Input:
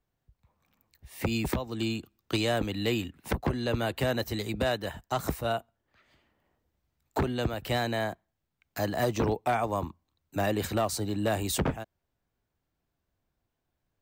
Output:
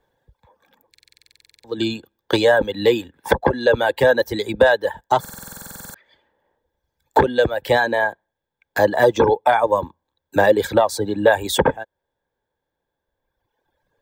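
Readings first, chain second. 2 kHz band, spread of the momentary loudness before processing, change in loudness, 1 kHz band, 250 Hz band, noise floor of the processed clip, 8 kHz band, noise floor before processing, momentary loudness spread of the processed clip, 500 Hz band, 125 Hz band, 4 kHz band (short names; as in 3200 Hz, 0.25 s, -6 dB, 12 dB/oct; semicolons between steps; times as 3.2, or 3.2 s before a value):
+14.0 dB, 7 LU, +12.0 dB, +12.5 dB, +6.0 dB, -81 dBFS, +4.5 dB, -82 dBFS, 17 LU, +14.5 dB, +1.5 dB, +7.5 dB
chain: small resonant body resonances 520/870/1600/3400 Hz, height 17 dB, ringing for 20 ms; in parallel at -2.5 dB: compressor, threshold -28 dBFS, peak gain reduction 15.5 dB; on the sum: reverb removal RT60 2 s; stuck buffer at 0.9/5.2, samples 2048, times 15; gain +2 dB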